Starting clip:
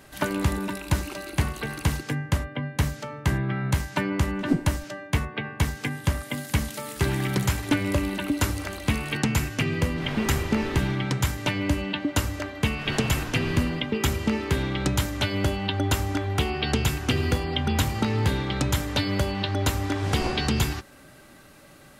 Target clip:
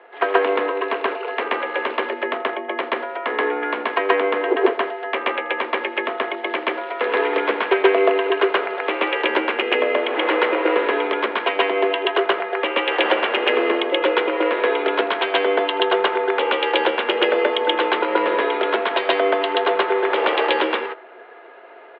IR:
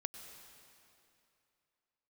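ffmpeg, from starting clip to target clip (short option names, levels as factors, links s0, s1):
-filter_complex "[0:a]adynamicsmooth=sensitivity=1:basefreq=1800,highpass=f=310:t=q:w=0.5412,highpass=f=310:t=q:w=1.307,lowpass=f=3400:t=q:w=0.5176,lowpass=f=3400:t=q:w=0.7071,lowpass=f=3400:t=q:w=1.932,afreqshift=98,acontrast=36,aecho=1:1:82:0.075,asplit=2[s0][s1];[1:a]atrim=start_sample=2205,atrim=end_sample=3969,adelay=129[s2];[s1][s2]afir=irnorm=-1:irlink=0,volume=1.78[s3];[s0][s3]amix=inputs=2:normalize=0,volume=1.41"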